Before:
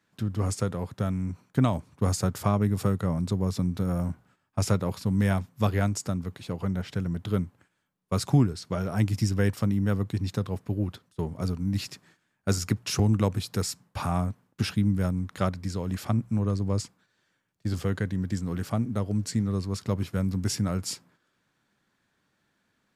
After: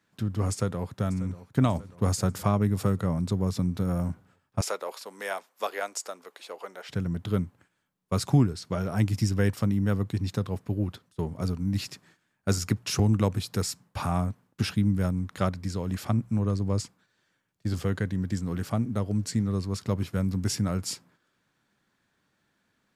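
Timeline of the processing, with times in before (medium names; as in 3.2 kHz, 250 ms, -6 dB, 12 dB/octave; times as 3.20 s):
0.51–1.32 s: echo throw 590 ms, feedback 60%, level -16 dB
4.61–6.89 s: high-pass 460 Hz 24 dB/octave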